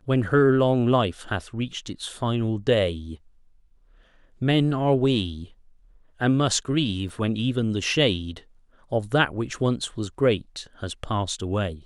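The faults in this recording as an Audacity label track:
7.090000	7.090000	gap 3.2 ms

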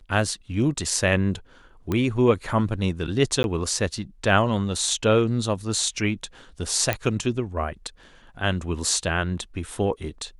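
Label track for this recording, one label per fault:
1.920000	1.920000	pop -13 dBFS
3.430000	3.440000	gap 11 ms
6.930000	6.930000	pop -8 dBFS

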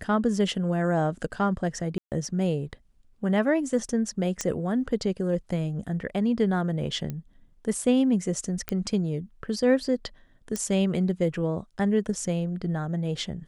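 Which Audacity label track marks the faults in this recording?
1.980000	2.120000	gap 0.138 s
4.410000	4.410000	pop -13 dBFS
7.100000	7.100000	pop -20 dBFS
8.690000	8.690000	pop -11 dBFS
10.560000	10.560000	pop -16 dBFS

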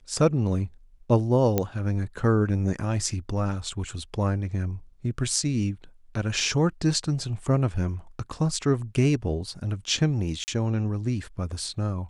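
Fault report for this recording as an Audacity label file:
1.580000	1.580000	pop -9 dBFS
10.440000	10.480000	gap 39 ms

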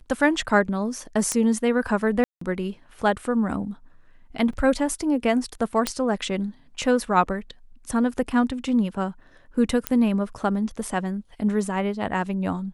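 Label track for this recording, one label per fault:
1.320000	1.320000	pop -10 dBFS
2.240000	2.410000	gap 0.174 s
4.530000	4.530000	gap 3.7 ms
5.870000	5.870000	pop -7 dBFS
9.870000	9.870000	pop -6 dBFS

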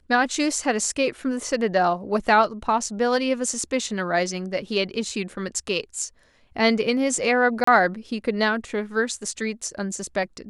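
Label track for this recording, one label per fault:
7.640000	7.670000	gap 34 ms

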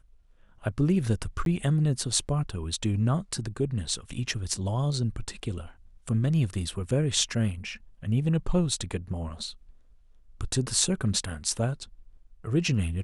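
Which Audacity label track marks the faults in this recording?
1.450000	1.460000	gap 12 ms

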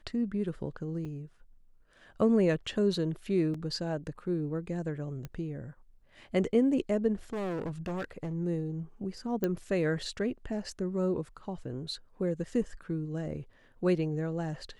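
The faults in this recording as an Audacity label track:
1.050000	1.050000	gap 5 ms
3.540000	3.540000	gap 3.9 ms
5.250000	5.250000	pop -26 dBFS
7.330000	8.340000	clipped -31.5 dBFS
9.440000	9.440000	pop -17 dBFS

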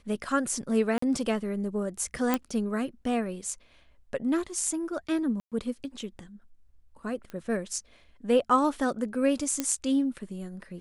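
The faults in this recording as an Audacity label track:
0.980000	1.020000	gap 44 ms
2.340000	2.340000	pop -11 dBFS
5.400000	5.520000	gap 0.117 s
7.300000	7.300000	pop -27 dBFS
9.600000	9.600000	pop -12 dBFS

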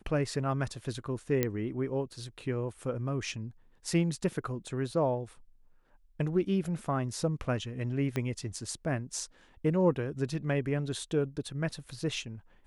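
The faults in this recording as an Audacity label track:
1.430000	1.430000	pop -13 dBFS
8.160000	8.160000	pop -19 dBFS

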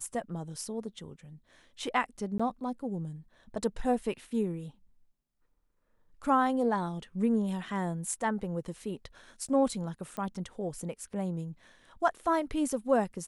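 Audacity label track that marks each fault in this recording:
2.380000	2.400000	gap 15 ms
10.170000	10.170000	pop -24 dBFS

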